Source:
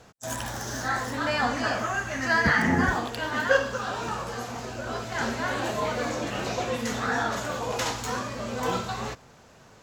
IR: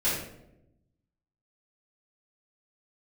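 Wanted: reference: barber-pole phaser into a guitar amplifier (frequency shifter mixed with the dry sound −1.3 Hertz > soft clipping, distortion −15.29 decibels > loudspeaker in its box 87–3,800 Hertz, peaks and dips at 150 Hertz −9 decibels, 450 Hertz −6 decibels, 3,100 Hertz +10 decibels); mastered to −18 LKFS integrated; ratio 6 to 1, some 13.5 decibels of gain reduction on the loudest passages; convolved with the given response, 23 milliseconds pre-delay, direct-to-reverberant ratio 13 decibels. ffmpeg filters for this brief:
-filter_complex "[0:a]acompressor=threshold=-31dB:ratio=6,asplit=2[link_01][link_02];[1:a]atrim=start_sample=2205,adelay=23[link_03];[link_02][link_03]afir=irnorm=-1:irlink=0,volume=-23.5dB[link_04];[link_01][link_04]amix=inputs=2:normalize=0,asplit=2[link_05][link_06];[link_06]afreqshift=-1.3[link_07];[link_05][link_07]amix=inputs=2:normalize=1,asoftclip=threshold=-32.5dB,highpass=87,equalizer=frequency=150:width_type=q:width=4:gain=-9,equalizer=frequency=450:width_type=q:width=4:gain=-6,equalizer=frequency=3100:width_type=q:width=4:gain=10,lowpass=frequency=3800:width=0.5412,lowpass=frequency=3800:width=1.3066,volume=21.5dB"

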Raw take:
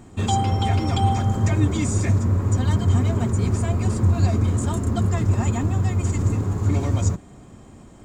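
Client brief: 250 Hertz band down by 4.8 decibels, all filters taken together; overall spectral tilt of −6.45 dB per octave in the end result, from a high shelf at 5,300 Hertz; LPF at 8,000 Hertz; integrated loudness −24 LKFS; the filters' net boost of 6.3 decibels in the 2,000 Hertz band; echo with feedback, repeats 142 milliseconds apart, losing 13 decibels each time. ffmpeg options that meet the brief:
ffmpeg -i in.wav -af "lowpass=8000,equalizer=frequency=250:width_type=o:gain=-6.5,equalizer=frequency=2000:width_type=o:gain=8.5,highshelf=frequency=5300:gain=-6.5,aecho=1:1:142|284|426:0.224|0.0493|0.0108,volume=-1.5dB" out.wav

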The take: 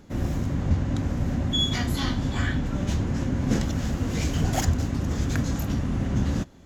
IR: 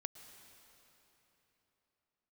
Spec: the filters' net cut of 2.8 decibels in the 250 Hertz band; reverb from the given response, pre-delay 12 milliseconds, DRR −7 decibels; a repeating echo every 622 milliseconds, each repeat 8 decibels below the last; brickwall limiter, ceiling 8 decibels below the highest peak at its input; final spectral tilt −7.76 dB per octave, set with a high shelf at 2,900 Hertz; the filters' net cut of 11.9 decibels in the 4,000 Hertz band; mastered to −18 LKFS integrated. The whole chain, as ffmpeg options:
-filter_complex "[0:a]equalizer=frequency=250:width_type=o:gain=-3.5,highshelf=frequency=2900:gain=-9,equalizer=frequency=4000:width_type=o:gain=-8.5,alimiter=limit=-19.5dB:level=0:latency=1,aecho=1:1:622|1244|1866|2488|3110:0.398|0.159|0.0637|0.0255|0.0102,asplit=2[link_01][link_02];[1:a]atrim=start_sample=2205,adelay=12[link_03];[link_02][link_03]afir=irnorm=-1:irlink=0,volume=10dB[link_04];[link_01][link_04]amix=inputs=2:normalize=0,volume=2.5dB"

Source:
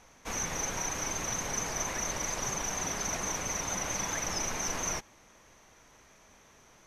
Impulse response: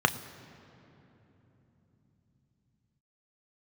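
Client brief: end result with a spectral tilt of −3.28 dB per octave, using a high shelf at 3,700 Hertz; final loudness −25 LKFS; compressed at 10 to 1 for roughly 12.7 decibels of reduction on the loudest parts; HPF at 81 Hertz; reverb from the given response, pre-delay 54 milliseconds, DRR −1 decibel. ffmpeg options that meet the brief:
-filter_complex "[0:a]highpass=81,highshelf=frequency=3700:gain=3.5,acompressor=threshold=-41dB:ratio=10,asplit=2[link_01][link_02];[1:a]atrim=start_sample=2205,adelay=54[link_03];[link_02][link_03]afir=irnorm=-1:irlink=0,volume=-12.5dB[link_04];[link_01][link_04]amix=inputs=2:normalize=0,volume=15.5dB"

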